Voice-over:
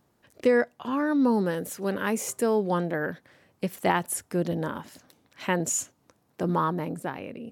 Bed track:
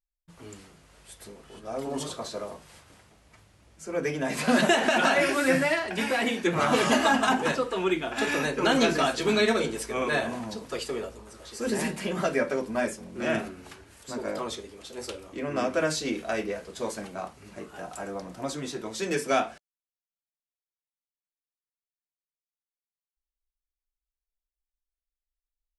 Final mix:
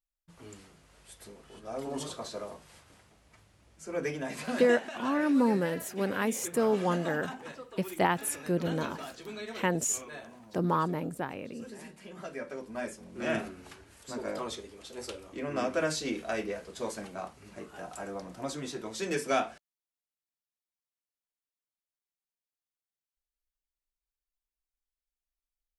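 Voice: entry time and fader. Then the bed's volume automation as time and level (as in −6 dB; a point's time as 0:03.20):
4.15 s, −2.5 dB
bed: 0:04.07 −4 dB
0:04.90 −18 dB
0:11.97 −18 dB
0:13.31 −3.5 dB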